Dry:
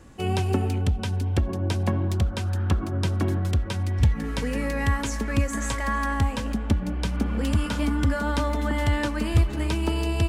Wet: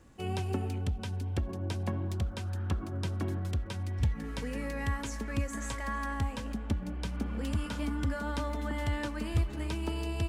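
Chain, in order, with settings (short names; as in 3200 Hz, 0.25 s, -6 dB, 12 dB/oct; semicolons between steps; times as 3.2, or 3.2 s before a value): crackle 120/s -53 dBFS; gain -9 dB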